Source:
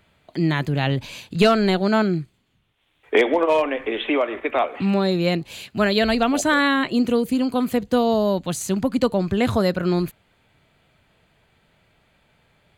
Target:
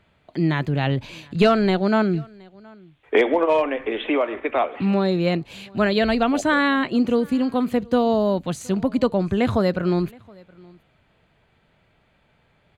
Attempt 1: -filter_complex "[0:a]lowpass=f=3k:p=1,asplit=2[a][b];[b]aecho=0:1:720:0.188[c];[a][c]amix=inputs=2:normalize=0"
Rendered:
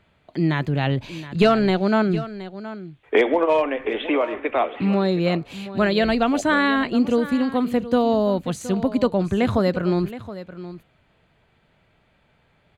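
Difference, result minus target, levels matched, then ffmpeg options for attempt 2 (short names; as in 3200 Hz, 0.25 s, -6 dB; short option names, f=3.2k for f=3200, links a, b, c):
echo-to-direct +11.5 dB
-filter_complex "[0:a]lowpass=f=3k:p=1,asplit=2[a][b];[b]aecho=0:1:720:0.0501[c];[a][c]amix=inputs=2:normalize=0"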